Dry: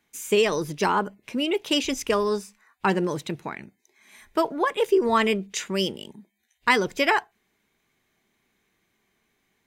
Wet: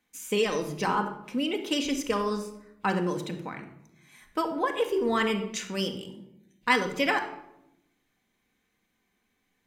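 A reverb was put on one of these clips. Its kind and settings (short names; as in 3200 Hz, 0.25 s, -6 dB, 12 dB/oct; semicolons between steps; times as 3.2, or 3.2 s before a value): shoebox room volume 2500 m³, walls furnished, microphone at 2 m; gain -5.5 dB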